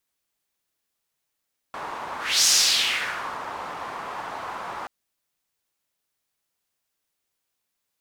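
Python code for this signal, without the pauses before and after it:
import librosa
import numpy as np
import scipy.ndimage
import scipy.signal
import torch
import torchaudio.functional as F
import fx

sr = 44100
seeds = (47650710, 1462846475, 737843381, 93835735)

y = fx.whoosh(sr, seeds[0], length_s=3.13, peak_s=0.71, rise_s=0.3, fall_s=0.98, ends_hz=1000.0, peak_hz=5900.0, q=2.4, swell_db=16.0)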